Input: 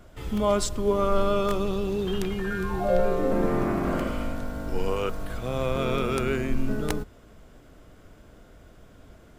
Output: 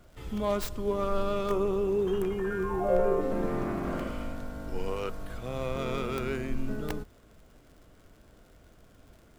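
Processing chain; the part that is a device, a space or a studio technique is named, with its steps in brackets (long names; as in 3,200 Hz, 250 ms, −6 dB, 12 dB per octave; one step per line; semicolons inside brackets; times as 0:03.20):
record under a worn stylus (stylus tracing distortion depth 0.24 ms; surface crackle 75 per second −43 dBFS; pink noise bed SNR 40 dB)
0:01.50–0:03.21: graphic EQ with 15 bands 400 Hz +8 dB, 1,000 Hz +6 dB, 4,000 Hz −9 dB
level −6 dB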